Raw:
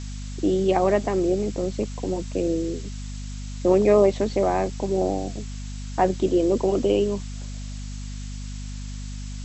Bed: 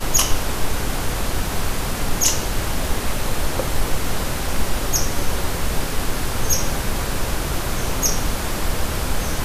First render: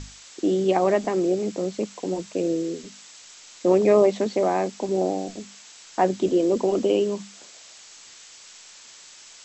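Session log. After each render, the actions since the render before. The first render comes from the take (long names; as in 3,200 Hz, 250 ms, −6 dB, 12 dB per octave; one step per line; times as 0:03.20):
mains-hum notches 50/100/150/200/250 Hz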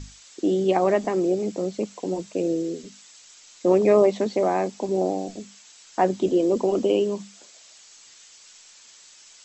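broadband denoise 6 dB, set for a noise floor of −47 dBFS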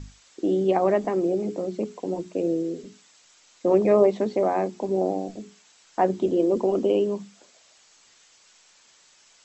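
high-shelf EQ 2,500 Hz −9.5 dB
mains-hum notches 60/120/180/240/300/360/420 Hz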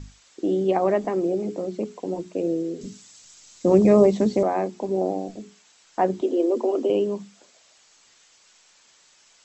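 0:02.81–0:04.43: bass and treble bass +13 dB, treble +10 dB
0:06.21–0:06.90: Butterworth high-pass 230 Hz 96 dB per octave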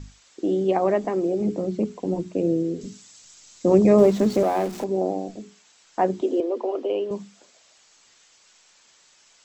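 0:01.40–0:02.80: bass and treble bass +10 dB, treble −1 dB
0:03.98–0:04.84: converter with a step at zero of −33 dBFS
0:06.40–0:07.11: band-pass filter 440–3,800 Hz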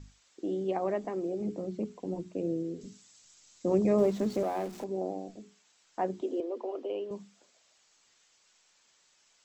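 level −10 dB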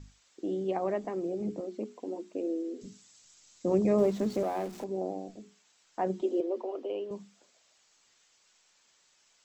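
0:01.60–0:02.82: linear-phase brick-wall high-pass 210 Hz
0:06.06–0:06.62: comb filter 5.4 ms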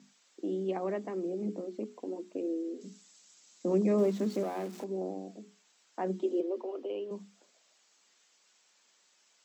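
elliptic high-pass filter 180 Hz
dynamic equaliser 700 Hz, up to −5 dB, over −43 dBFS, Q 1.5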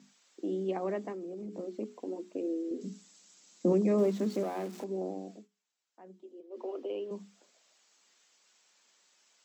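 0:01.12–0:01.59: downward compressor, threshold −38 dBFS
0:02.71–0:03.73: low-shelf EQ 370 Hz +9.5 dB
0:05.34–0:06.64: duck −19.5 dB, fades 0.14 s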